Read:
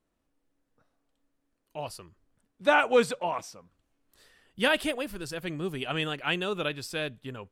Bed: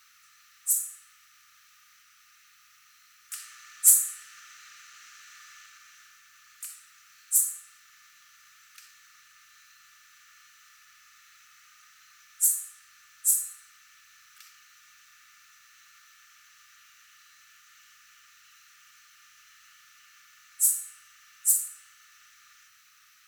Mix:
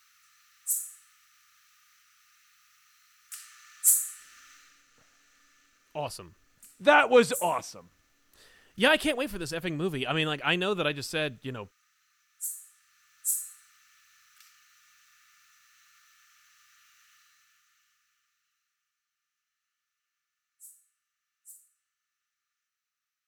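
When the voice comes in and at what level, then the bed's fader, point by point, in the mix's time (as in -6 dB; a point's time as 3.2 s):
4.20 s, +2.5 dB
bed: 4.54 s -4 dB
4.85 s -13.5 dB
12.32 s -13.5 dB
13.39 s -5 dB
17.14 s -5 dB
18.98 s -28.5 dB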